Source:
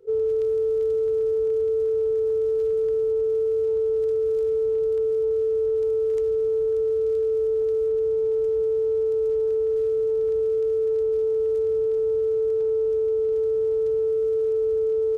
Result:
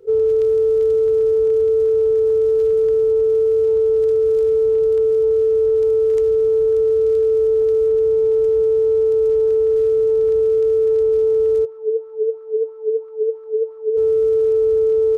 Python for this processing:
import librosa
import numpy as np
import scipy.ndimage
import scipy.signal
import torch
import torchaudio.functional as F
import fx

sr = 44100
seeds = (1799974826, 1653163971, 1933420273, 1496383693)

y = fx.wah_lfo(x, sr, hz=3.0, low_hz=390.0, high_hz=1200.0, q=5.6, at=(11.64, 13.96), fade=0.02)
y = y * librosa.db_to_amplitude(7.0)